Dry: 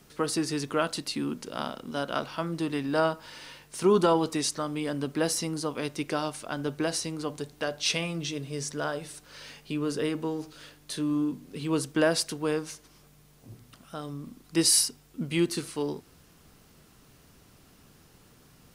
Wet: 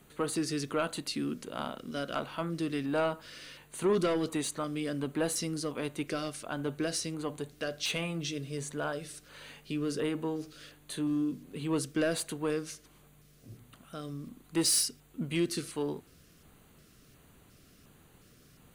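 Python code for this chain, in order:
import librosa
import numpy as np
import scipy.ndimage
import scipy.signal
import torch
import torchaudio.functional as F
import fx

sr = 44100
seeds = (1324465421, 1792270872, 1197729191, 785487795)

y = 10.0 ** (-19.0 / 20.0) * np.tanh(x / 10.0 ** (-19.0 / 20.0))
y = fx.filter_lfo_notch(y, sr, shape='square', hz=1.4, low_hz=890.0, high_hz=5300.0, q=1.7)
y = y * librosa.db_to_amplitude(-2.0)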